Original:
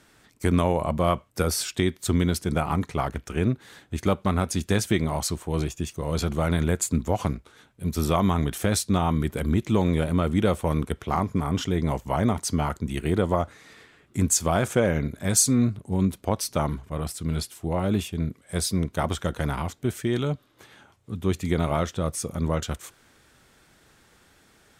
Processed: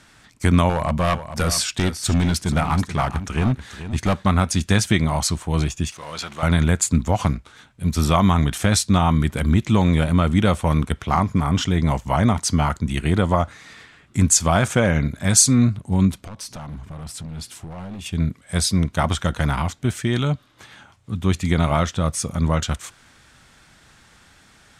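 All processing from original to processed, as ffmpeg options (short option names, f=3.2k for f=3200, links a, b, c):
-filter_complex "[0:a]asettb=1/sr,asplit=3[a][b][c];[a]atrim=end=0.694[d];[b]atrim=start=0.69:end=4.26,asetpts=PTS-STARTPTS,afade=t=in:d=0.004:c=qsin,afade=t=out:st=3.566:d=0.004:c=qsin,deesser=0.3,volume=18.5dB,asoftclip=hard,volume=-18.5dB,aecho=1:1:434:0.266,atrim=end_sample=157437[e];[c]atrim=start=4.256[f];[d][e]acrossfade=d=0.004:c1=hsin:c2=qsin[g];[g][f]acrossfade=d=0.004:c1=qsin:c2=hsin,asettb=1/sr,asplit=3[h][i][j];[h]atrim=end=5.924[k];[i]atrim=start=5.92:end=6.43,asetpts=PTS-STARTPTS,afade=t=in:d=0.004:c=qsin,afade=t=out:st=0.506:d=0.004:c=qsin,aeval=exprs='val(0)+0.5*0.0126*sgn(val(0))':c=same,highpass=f=1.5k:p=1,aemphasis=mode=reproduction:type=cd[l];[j]atrim=start=6.426[m];[k][l]acrossfade=d=0.004:c1=hsin:c2=qsin[n];[n][m]acrossfade=d=0.004:c1=qsin:c2=hsin,asettb=1/sr,asplit=3[o][p][q];[o]atrim=end=16.254[r];[p]atrim=start=16.25:end=18.06,asetpts=PTS-STARTPTS,afade=t=in:d=0.004:c=qsin,afade=t=out:st=1.806:d=0.004:c=qsin,equalizer=f=220:t=o:w=2.5:g=5,acompressor=threshold=-34dB:ratio=4:attack=3.2:release=140:knee=1:detection=peak,asoftclip=type=hard:threshold=-35.5dB[s];[q]atrim=start=18.056[t];[r][s]acrossfade=d=0.004:c1=hsin:c2=qsin[u];[u][t]acrossfade=d=0.004:c1=qsin:c2=hsin,lowpass=9.3k,equalizer=f=410:t=o:w=1.1:g=-8.5,volume=7.5dB"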